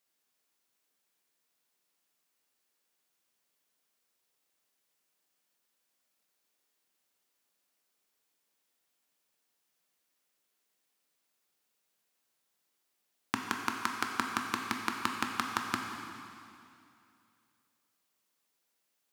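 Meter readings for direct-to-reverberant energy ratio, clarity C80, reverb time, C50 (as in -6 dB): 2.0 dB, 4.5 dB, 2.6 s, 3.5 dB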